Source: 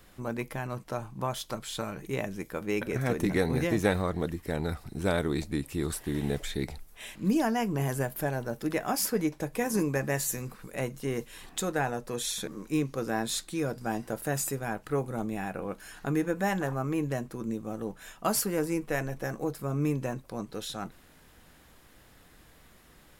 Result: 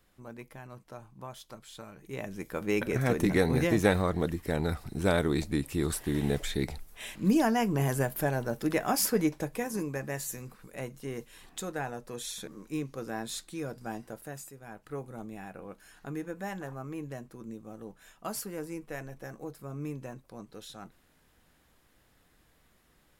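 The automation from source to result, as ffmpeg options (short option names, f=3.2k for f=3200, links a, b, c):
-af "volume=9.5dB,afade=t=in:st=2:d=0.69:silence=0.223872,afade=t=out:st=9.29:d=0.42:silence=0.421697,afade=t=out:st=13.9:d=0.63:silence=0.281838,afade=t=in:st=14.53:d=0.4:silence=0.398107"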